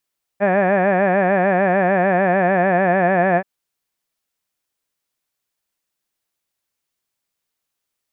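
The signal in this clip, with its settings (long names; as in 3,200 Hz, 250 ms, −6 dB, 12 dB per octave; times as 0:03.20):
vowel by formant synthesis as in had, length 3.03 s, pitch 193 Hz, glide −1 semitone, vibrato 6.7 Hz, vibrato depth 1.05 semitones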